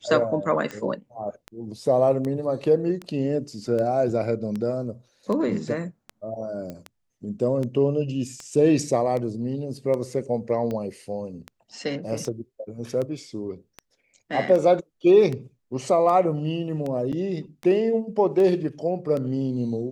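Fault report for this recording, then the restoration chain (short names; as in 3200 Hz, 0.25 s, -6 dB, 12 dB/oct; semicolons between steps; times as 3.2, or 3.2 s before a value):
tick 78 rpm -19 dBFS
6.7 pop -22 dBFS
17.12–17.13 gap 7.4 ms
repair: de-click; interpolate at 17.12, 7.4 ms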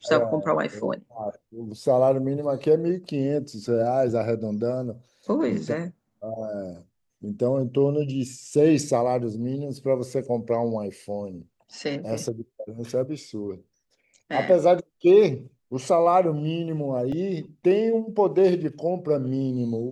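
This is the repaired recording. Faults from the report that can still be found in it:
6.7 pop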